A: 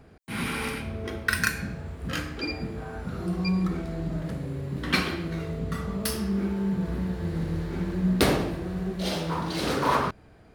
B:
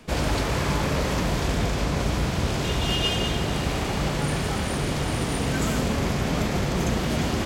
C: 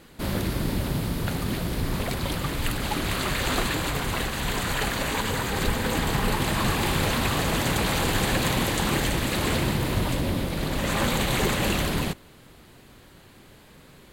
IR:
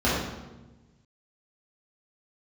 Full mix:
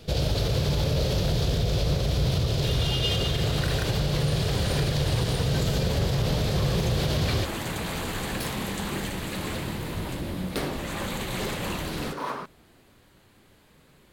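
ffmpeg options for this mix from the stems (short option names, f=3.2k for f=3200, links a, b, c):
-filter_complex "[0:a]highpass=170,adelay=2350,volume=-8.5dB[a];[1:a]equalizer=f=125:t=o:w=1:g=8,equalizer=f=250:t=o:w=1:g=-12,equalizer=f=500:t=o:w=1:g=6,equalizer=f=1k:t=o:w=1:g=-12,equalizer=f=2k:t=o:w=1:g=-10,equalizer=f=4k:t=o:w=1:g=8,equalizer=f=8k:t=o:w=1:g=-8,volume=3dB[b];[2:a]flanger=delay=9.4:depth=4.6:regen=-56:speed=0.53:shape=sinusoidal,asoftclip=type=hard:threshold=-20.5dB,volume=-3dB[c];[a][b][c]amix=inputs=3:normalize=0,alimiter=limit=-16dB:level=0:latency=1:release=68"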